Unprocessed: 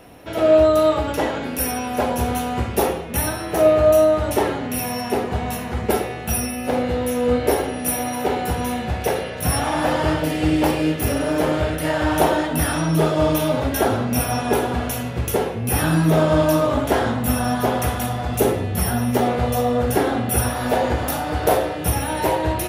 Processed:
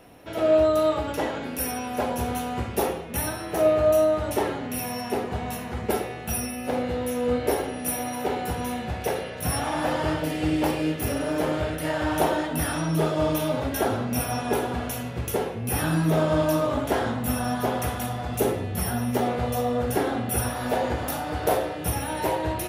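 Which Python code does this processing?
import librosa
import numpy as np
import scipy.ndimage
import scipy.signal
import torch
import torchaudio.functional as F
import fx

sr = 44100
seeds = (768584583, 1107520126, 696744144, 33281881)

y = fx.peak_eq(x, sr, hz=66.0, db=-2.5, octaves=0.77)
y = F.gain(torch.from_numpy(y), -5.5).numpy()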